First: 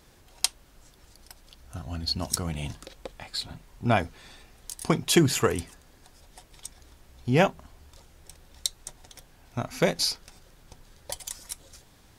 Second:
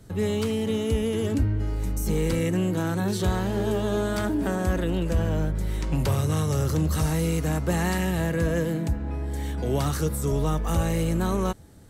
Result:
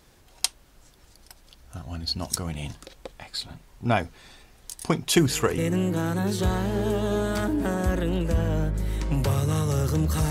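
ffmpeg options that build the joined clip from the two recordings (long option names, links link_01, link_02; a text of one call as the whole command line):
ffmpeg -i cue0.wav -i cue1.wav -filter_complex "[1:a]asplit=2[link_01][link_02];[0:a]apad=whole_dur=10.3,atrim=end=10.3,atrim=end=5.582[link_03];[link_02]atrim=start=2.388:end=7.11[link_04];[link_01]atrim=start=1.97:end=2.39,asetpts=PTS-STARTPTS,volume=-15dB,afade=type=in:duration=0.004:curve=hsin,afade=type=out:start_time=0.416:duration=0.004:curve=hsin,adelay=5160[link_05];[link_03][link_04]acrossfade=duration=0.004:curve1=hsin:curve2=hsin[link_06];[link_06][link_05]amix=inputs=2:normalize=0" out.wav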